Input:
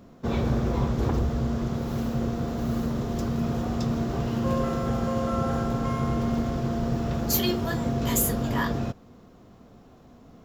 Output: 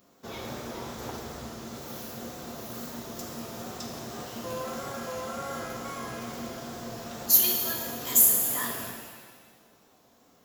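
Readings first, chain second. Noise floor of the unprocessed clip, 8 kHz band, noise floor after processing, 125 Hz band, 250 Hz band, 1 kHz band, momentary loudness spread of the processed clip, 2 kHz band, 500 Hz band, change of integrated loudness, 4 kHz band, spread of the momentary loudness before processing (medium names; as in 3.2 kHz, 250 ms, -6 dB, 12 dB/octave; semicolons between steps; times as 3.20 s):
-52 dBFS, +7.0 dB, -61 dBFS, -18.0 dB, -13.5 dB, -5.5 dB, 20 LU, -3.0 dB, -8.0 dB, -0.5 dB, +0.5 dB, 5 LU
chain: wow and flutter 69 cents; RIAA curve recording; pitch-shifted reverb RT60 1.6 s, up +7 st, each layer -8 dB, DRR 1 dB; trim -8.5 dB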